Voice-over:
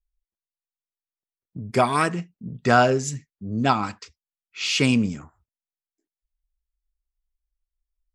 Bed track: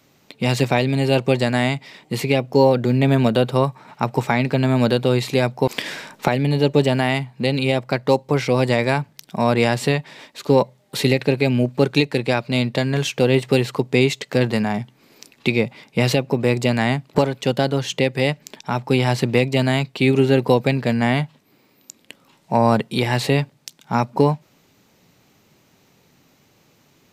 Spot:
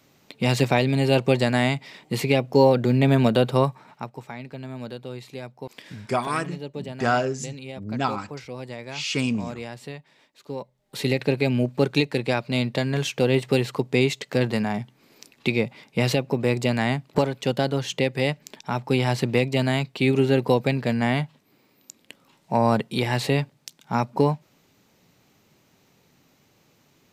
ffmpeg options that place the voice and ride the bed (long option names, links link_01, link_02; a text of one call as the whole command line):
ffmpeg -i stem1.wav -i stem2.wav -filter_complex "[0:a]adelay=4350,volume=-5dB[link_01];[1:a]volume=12dB,afade=type=out:start_time=3.66:duration=0.45:silence=0.158489,afade=type=in:start_time=10.73:duration=0.49:silence=0.199526[link_02];[link_01][link_02]amix=inputs=2:normalize=0" out.wav